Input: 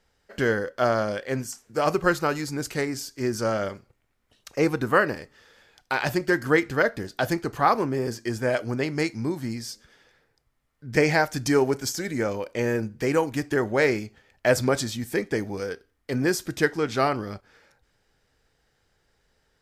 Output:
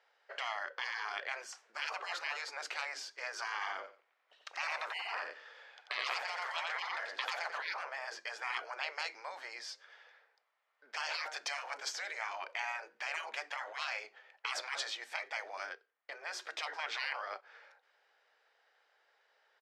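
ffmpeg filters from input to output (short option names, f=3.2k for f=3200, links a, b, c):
-filter_complex "[0:a]asplit=3[a][b][c];[a]afade=t=out:st=3.6:d=0.02[d];[b]aecho=1:1:89|178|267:0.631|0.126|0.0252,afade=t=in:st=3.6:d=0.02,afade=t=out:st=7.55:d=0.02[e];[c]afade=t=in:st=7.55:d=0.02[f];[d][e][f]amix=inputs=3:normalize=0,asettb=1/sr,asplit=3[g][h][i];[g]atrim=end=8.794[j];[h]atrim=start=8.79:end=11.09,asetpts=PTS-STARTPTS,afade=t=in:d=0.004:c=qsin,afade=t=out:st=2.296:d=0.004:c=qsin,equalizer=f=190:w=1.9:g=-15[k];[i]atrim=start=11.086[l];[j][k]acrossfade=d=0.004:c1=hsin:c2=qsin[m];[m][l]acrossfade=d=0.004:c1=qsin:c2=hsin,asplit=3[n][o][p];[n]atrim=end=15.76,asetpts=PTS-STARTPTS,afade=t=out:st=15.57:d=0.19:c=qsin:silence=0.398107[q];[o]atrim=start=15.76:end=16.3,asetpts=PTS-STARTPTS,volume=-8dB[r];[p]atrim=start=16.3,asetpts=PTS-STARTPTS,afade=t=in:d=0.19:c=qsin:silence=0.398107[s];[q][r][s]concat=n=3:v=0:a=1,lowpass=3.2k,afftfilt=real='re*lt(hypot(re,im),0.0708)':imag='im*lt(hypot(re,im),0.0708)':win_size=1024:overlap=0.75,highpass=f=580:w=0.5412,highpass=f=580:w=1.3066,volume=1.5dB"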